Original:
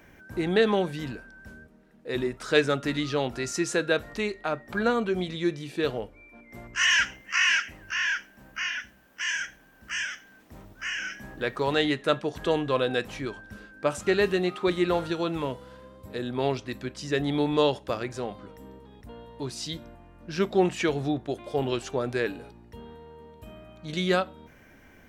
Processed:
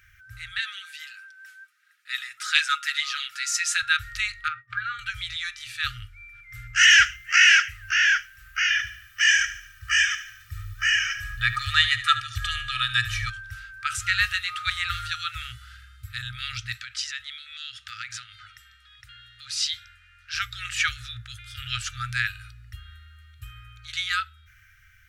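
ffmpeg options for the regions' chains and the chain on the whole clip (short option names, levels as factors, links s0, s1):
-filter_complex "[0:a]asettb=1/sr,asplit=3[s0][s1][s2];[s0]atrim=end=0.584[s3];[s1]atrim=start=0.58:end=3.83,asetpts=PTS-STARTPTS,afade=t=in:d=0.004:c=qsin,afade=t=out:st=3.246:d=0.004:c=qsin,highpass=1300,aecho=1:1:6.3:0.51,atrim=end_sample=143325[s4];[s2]atrim=start=3.826[s5];[s3][s4]acrossfade=d=0.004:c1=hsin:c2=qsin[s6];[s6][s5]acrossfade=d=0.004:c1=qsin:c2=hsin,asettb=1/sr,asplit=3[s7][s8][s9];[s7]atrim=end=4.484[s10];[s8]atrim=start=4.48:end=4.99,asetpts=PTS-STARTPTS,afade=t=in:d=0.004:c=qsin,afade=t=out:st=0.506:d=0.004:c=qsin,agate=range=0.0224:threshold=0.0112:ratio=3:release=100:detection=peak,acompressor=threshold=0.0501:ratio=10:attack=3.2:release=140:knee=1:detection=peak,highpass=110,lowpass=3000[s11];[s9]atrim=start=4.986[s12];[s10][s11]acrossfade=d=0.004:c1=hsin:c2=qsin[s13];[s13][s12]acrossfade=d=0.004:c1=qsin:c2=hsin,asettb=1/sr,asplit=3[s14][s15][s16];[s14]atrim=end=8.704[s17];[s15]atrim=start=8.7:end=13.3,asetpts=PTS-STARTPTS,afade=t=in:d=0.004:c=qsin,afade=t=out:st=4.596:d=0.004:c=qsin,equalizer=f=100:t=o:w=0.57:g=6,aecho=1:1:1.7:0.79,atrim=end_sample=202860,aecho=1:1:74|148|222|296|370:0.2|0.0978|0.0479|0.0235|0.0115,atrim=end_sample=202860[s18];[s16]atrim=start=13.296[s19];[s17][s18]acrossfade=d=0.004:c1=hsin:c2=qsin[s20];[s20][s19]acrossfade=d=0.004:c1=qsin:c2=hsin,asettb=1/sr,asplit=3[s21][s22][s23];[s21]atrim=end=16.734[s24];[s22]atrim=start=16.73:end=20.35,asetpts=PTS-STARTPTS,afade=t=in:d=0.004:c=qsin,afade=t=out:st=3.616:d=0.004:c=qsin,lowpass=4000,acompressor=threshold=0.02:ratio=6:attack=3.2:release=140:knee=1:detection=peak,aemphasis=mode=production:type=riaa[s25];[s23]atrim=start=20.346[s26];[s24][s25]acrossfade=d=0.004:c1=hsin:c2=qsin[s27];[s27][s26]acrossfade=d=0.004:c1=qsin:c2=hsin,afftfilt=real='re*(1-between(b*sr/4096,120,1200))':imag='im*(1-between(b*sr/4096,120,1200))':win_size=4096:overlap=0.75,dynaudnorm=f=220:g=13:m=2.51"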